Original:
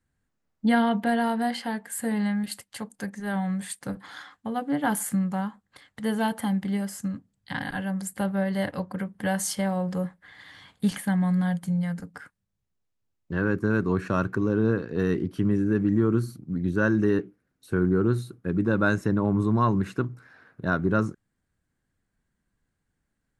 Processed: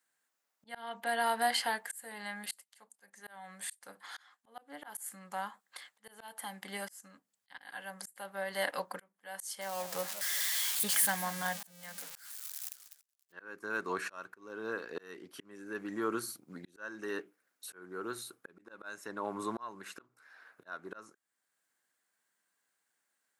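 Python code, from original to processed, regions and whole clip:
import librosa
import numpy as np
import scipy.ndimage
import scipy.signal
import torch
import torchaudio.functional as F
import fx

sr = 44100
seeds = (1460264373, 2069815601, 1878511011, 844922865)

y = fx.chain(x, sr, fx.crossing_spikes(level_db=-25.0),
    fx.high_shelf(hz=7400.0, db=-9.0),
    fx.echo_warbled(ms=186, feedback_pct=39, rate_hz=2.8, cents=219, wet_db=-16.0), at=(9.61, 13.32))
y = scipy.signal.sosfilt(scipy.signal.butter(2, 690.0, 'highpass', fs=sr, output='sos'), y)
y = fx.high_shelf(y, sr, hz=6100.0, db=8.5)
y = fx.auto_swell(y, sr, attack_ms=678.0)
y = F.gain(torch.from_numpy(y), 1.5).numpy()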